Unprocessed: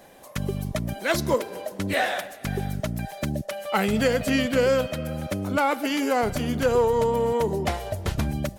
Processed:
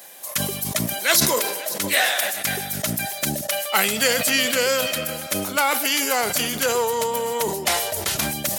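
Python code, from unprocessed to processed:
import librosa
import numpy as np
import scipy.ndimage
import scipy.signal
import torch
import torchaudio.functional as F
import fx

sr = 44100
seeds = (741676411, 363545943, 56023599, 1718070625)

y = scipy.signal.sosfilt(scipy.signal.butter(2, 73.0, 'highpass', fs=sr, output='sos'), x)
y = fx.tilt_eq(y, sr, slope=4.5)
y = y + 10.0 ** (-21.0 / 20.0) * np.pad(y, (int(538 * sr / 1000.0), 0))[:len(y)]
y = fx.sustainer(y, sr, db_per_s=45.0)
y = y * librosa.db_to_amplitude(2.0)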